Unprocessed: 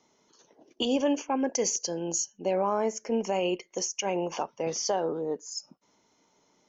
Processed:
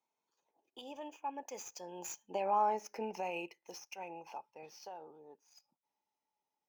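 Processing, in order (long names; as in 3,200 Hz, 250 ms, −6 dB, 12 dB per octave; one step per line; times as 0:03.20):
running median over 5 samples
source passing by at 0:02.65, 15 m/s, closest 1.4 metres
parametric band 110 Hz +4.5 dB 0.77 octaves
downward compressor 5 to 1, threshold −38 dBFS, peak gain reduction 13.5 dB
low-shelf EQ 320 Hz −9.5 dB
hollow resonant body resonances 850/2,500 Hz, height 12 dB, ringing for 25 ms
level +6 dB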